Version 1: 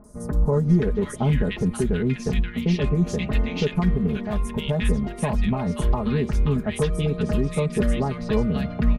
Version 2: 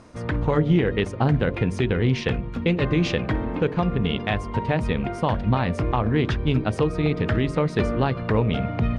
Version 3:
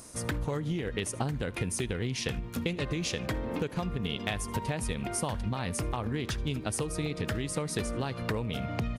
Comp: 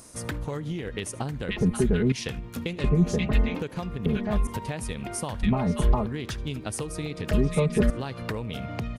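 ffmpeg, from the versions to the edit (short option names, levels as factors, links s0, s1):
-filter_complex "[0:a]asplit=5[s0][s1][s2][s3][s4];[2:a]asplit=6[s5][s6][s7][s8][s9][s10];[s5]atrim=end=1.492[s11];[s0]atrim=start=1.488:end=2.122[s12];[s6]atrim=start=2.118:end=2.842[s13];[s1]atrim=start=2.838:end=3.552[s14];[s7]atrim=start=3.548:end=4.062[s15];[s2]atrim=start=4.058:end=4.472[s16];[s8]atrim=start=4.468:end=5.432[s17];[s3]atrim=start=5.428:end=6.062[s18];[s9]atrim=start=6.058:end=7.312[s19];[s4]atrim=start=7.308:end=7.902[s20];[s10]atrim=start=7.898[s21];[s11][s12]acrossfade=d=0.004:c1=hsin:c2=hsin[s22];[s22][s13]acrossfade=d=0.004:c1=hsin:c2=hsin[s23];[s23][s14]acrossfade=d=0.004:c1=hsin:c2=hsin[s24];[s24][s15]acrossfade=d=0.004:c1=hsin:c2=hsin[s25];[s25][s16]acrossfade=d=0.004:c1=hsin:c2=hsin[s26];[s26][s17]acrossfade=d=0.004:c1=hsin:c2=hsin[s27];[s27][s18]acrossfade=d=0.004:c1=hsin:c2=hsin[s28];[s28][s19]acrossfade=d=0.004:c1=hsin:c2=hsin[s29];[s29][s20]acrossfade=d=0.004:c1=hsin:c2=hsin[s30];[s30][s21]acrossfade=d=0.004:c1=hsin:c2=hsin"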